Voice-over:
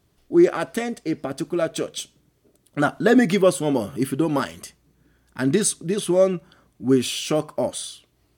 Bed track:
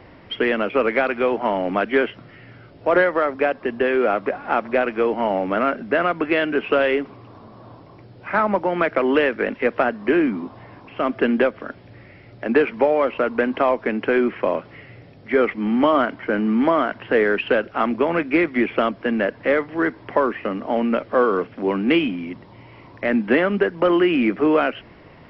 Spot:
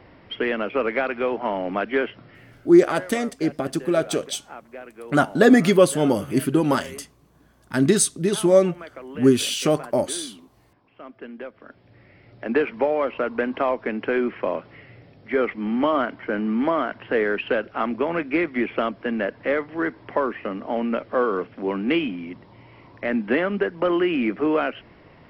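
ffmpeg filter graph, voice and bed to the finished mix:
ffmpeg -i stem1.wav -i stem2.wav -filter_complex "[0:a]adelay=2350,volume=2dB[link_01];[1:a]volume=11.5dB,afade=type=out:start_time=2.43:duration=0.37:silence=0.16788,afade=type=in:start_time=11.39:duration=1.12:silence=0.16788[link_02];[link_01][link_02]amix=inputs=2:normalize=0" out.wav

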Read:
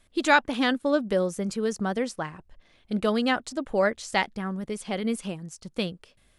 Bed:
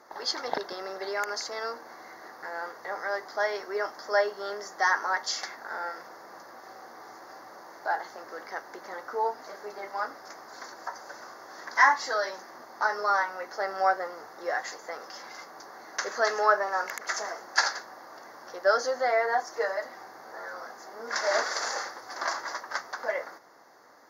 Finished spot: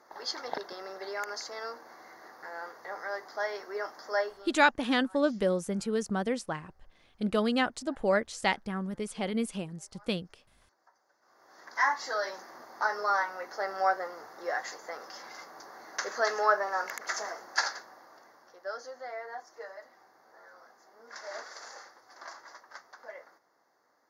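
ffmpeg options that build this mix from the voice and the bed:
ffmpeg -i stem1.wav -i stem2.wav -filter_complex "[0:a]adelay=4300,volume=-3dB[link_01];[1:a]volume=20.5dB,afade=type=out:start_time=4.21:duration=0.32:silence=0.0707946,afade=type=in:start_time=11.21:duration=1.08:silence=0.0530884,afade=type=out:start_time=17.27:duration=1.28:silence=0.237137[link_02];[link_01][link_02]amix=inputs=2:normalize=0" out.wav

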